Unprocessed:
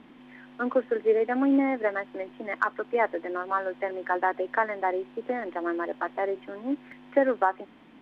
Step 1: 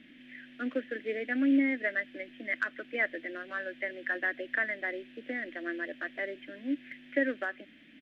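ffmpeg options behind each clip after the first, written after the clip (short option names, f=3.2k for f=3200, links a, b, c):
-af "firequalizer=gain_entry='entry(180,0);entry(280,5);entry(410,-7);entry(610,0);entry(880,-22);entry(1700,10);entry(2900,11);entry(4500,6);entry(7700,4)':delay=0.05:min_phase=1,volume=-7dB"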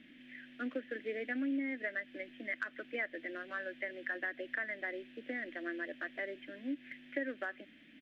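-af "acompressor=threshold=-32dB:ratio=3,volume=-3dB"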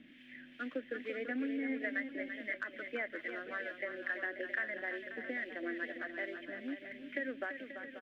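-filter_complex "[0:a]acrossover=split=1100[a][b];[a]aeval=exprs='val(0)*(1-0.5/2+0.5/2*cos(2*PI*2.3*n/s))':c=same[c];[b]aeval=exprs='val(0)*(1-0.5/2-0.5/2*cos(2*PI*2.3*n/s))':c=same[d];[c][d]amix=inputs=2:normalize=0,asplit=2[e][f];[f]aecho=0:1:338|535|667:0.376|0.251|0.251[g];[e][g]amix=inputs=2:normalize=0,volume=2dB"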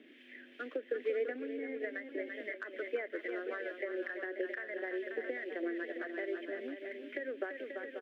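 -af "acompressor=threshold=-39dB:ratio=6,highpass=f=400:t=q:w=4.9"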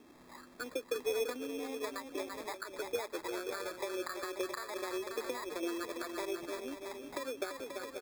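-af "acrusher=samples=15:mix=1:aa=0.000001"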